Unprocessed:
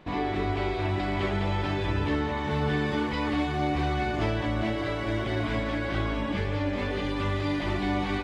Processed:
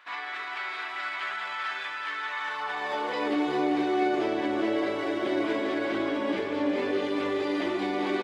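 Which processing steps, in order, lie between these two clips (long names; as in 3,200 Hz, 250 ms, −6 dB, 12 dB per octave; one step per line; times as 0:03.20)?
brickwall limiter −21.5 dBFS, peak gain reduction 5.5 dB
high-pass filter sweep 1,400 Hz → 350 Hz, 0:02.42–0:03.35
single-tap delay 390 ms −6.5 dB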